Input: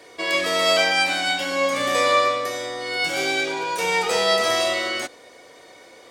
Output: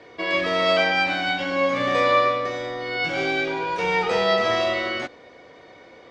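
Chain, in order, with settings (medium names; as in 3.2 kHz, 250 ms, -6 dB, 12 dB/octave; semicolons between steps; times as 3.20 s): low-pass 6.3 kHz 24 dB/octave; tone controls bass +7 dB, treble -12 dB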